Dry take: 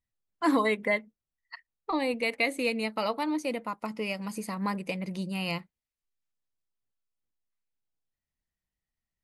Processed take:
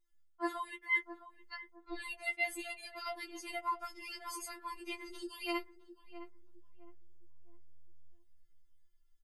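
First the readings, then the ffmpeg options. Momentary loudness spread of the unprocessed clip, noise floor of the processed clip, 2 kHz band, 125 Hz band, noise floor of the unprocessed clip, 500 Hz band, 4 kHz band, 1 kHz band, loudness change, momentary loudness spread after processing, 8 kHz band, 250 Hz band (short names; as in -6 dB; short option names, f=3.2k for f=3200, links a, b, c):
10 LU, -66 dBFS, -5.0 dB, under -30 dB, under -85 dBFS, -15.0 dB, -8.0 dB, -7.5 dB, -9.0 dB, 19 LU, -2.0 dB, -15.5 dB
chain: -filter_complex "[0:a]aecho=1:1:5.2:0.63,asubboost=boost=6.5:cutoff=52,areverse,acompressor=threshold=-35dB:ratio=20,areverse,asplit=2[a][b];[b]adelay=662,lowpass=f=900:p=1,volume=-11dB,asplit=2[c][d];[d]adelay=662,lowpass=f=900:p=1,volume=0.35,asplit=2[e][f];[f]adelay=662,lowpass=f=900:p=1,volume=0.35,asplit=2[g][h];[h]adelay=662,lowpass=f=900:p=1,volume=0.35[i];[a][c][e][g][i]amix=inputs=5:normalize=0,afftfilt=real='re*4*eq(mod(b,16),0)':imag='im*4*eq(mod(b,16),0)':win_size=2048:overlap=0.75,volume=4dB"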